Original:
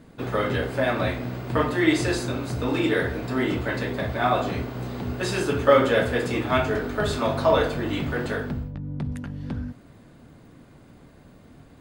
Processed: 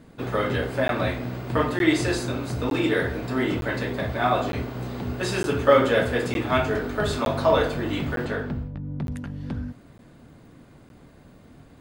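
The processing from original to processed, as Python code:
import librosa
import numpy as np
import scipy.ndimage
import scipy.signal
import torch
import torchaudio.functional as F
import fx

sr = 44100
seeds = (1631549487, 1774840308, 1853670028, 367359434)

y = fx.high_shelf(x, sr, hz=6600.0, db=-11.5, at=(8.25, 9.08))
y = fx.buffer_crackle(y, sr, first_s=0.88, period_s=0.91, block=512, kind='zero')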